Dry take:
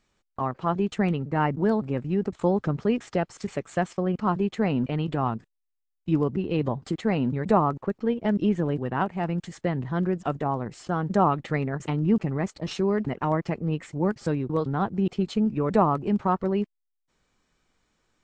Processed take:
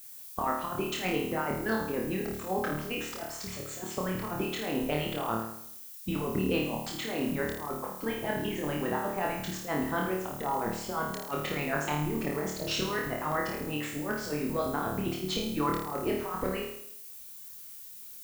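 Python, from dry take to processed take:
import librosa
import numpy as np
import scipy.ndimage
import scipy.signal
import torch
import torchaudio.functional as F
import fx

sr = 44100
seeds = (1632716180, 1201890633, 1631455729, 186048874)

y = fx.hpss(x, sr, part='harmonic', gain_db=-18)
y = fx.over_compress(y, sr, threshold_db=-33.0, ratio=-0.5)
y = fx.dmg_noise_colour(y, sr, seeds[0], colour='violet', level_db=-50.0)
y = fx.room_flutter(y, sr, wall_m=4.6, rt60_s=0.7)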